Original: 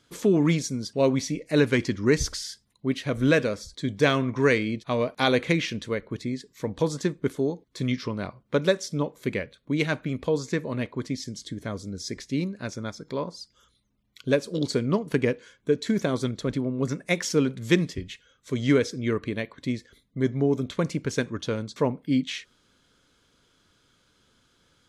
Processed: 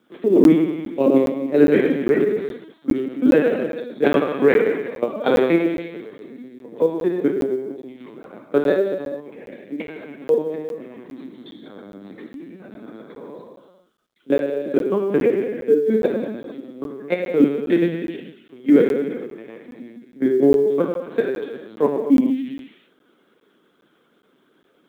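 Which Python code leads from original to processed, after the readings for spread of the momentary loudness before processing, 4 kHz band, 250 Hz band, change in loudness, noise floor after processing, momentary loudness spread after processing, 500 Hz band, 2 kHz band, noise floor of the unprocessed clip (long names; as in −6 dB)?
12 LU, can't be measured, +6.5 dB, +7.0 dB, −61 dBFS, 23 LU, +7.5 dB, −0.5 dB, −67 dBFS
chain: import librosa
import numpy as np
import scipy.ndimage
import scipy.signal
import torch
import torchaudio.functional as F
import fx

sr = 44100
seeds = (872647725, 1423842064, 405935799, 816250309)

p1 = fx.tracing_dist(x, sr, depth_ms=0.058)
p2 = fx.high_shelf(p1, sr, hz=2100.0, db=-10.0)
p3 = p2 + fx.echo_single(p2, sr, ms=114, db=-9.0, dry=0)
p4 = fx.level_steps(p3, sr, step_db=23)
p5 = fx.hum_notches(p4, sr, base_hz=60, count=5)
p6 = fx.doubler(p5, sr, ms=21.0, db=-10.0)
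p7 = fx.rev_gated(p6, sr, seeds[0], gate_ms=490, shape='falling', drr_db=-1.0)
p8 = fx.lpc_vocoder(p7, sr, seeds[1], excitation='pitch_kept', order=16)
p9 = scipy.signal.sosfilt(scipy.signal.butter(4, 220.0, 'highpass', fs=sr, output='sos'), p8)
p10 = fx.quant_companded(p9, sr, bits=8)
p11 = fx.low_shelf(p10, sr, hz=450.0, db=7.5)
p12 = fx.buffer_crackle(p11, sr, first_s=0.44, period_s=0.41, block=512, kind='zero')
y = p12 * librosa.db_to_amplitude(4.5)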